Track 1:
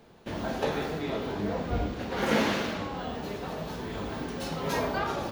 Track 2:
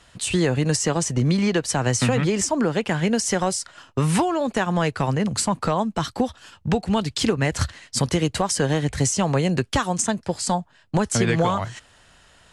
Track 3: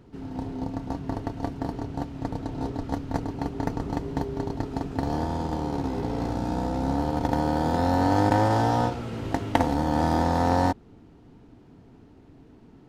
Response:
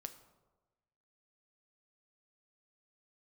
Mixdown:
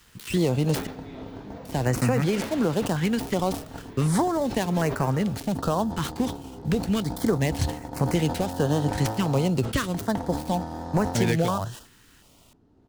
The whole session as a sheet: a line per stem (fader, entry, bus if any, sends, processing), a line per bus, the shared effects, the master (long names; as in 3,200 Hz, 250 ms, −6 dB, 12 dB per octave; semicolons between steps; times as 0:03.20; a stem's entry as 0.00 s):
−11.5 dB, 0.05 s, no send, no processing
−2.0 dB, 0.00 s, muted 0:00.87–0:01.65, no send, gap after every zero crossing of 0.09 ms; bit reduction 9 bits; notch on a step sequencer 2.7 Hz 640–3,400 Hz
−2.0 dB, 0.60 s, no send, parametric band 2,300 Hz −6.5 dB 0.81 octaves; automatic ducking −10 dB, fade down 1.70 s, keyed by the second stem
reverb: not used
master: level that may fall only so fast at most 110 dB per second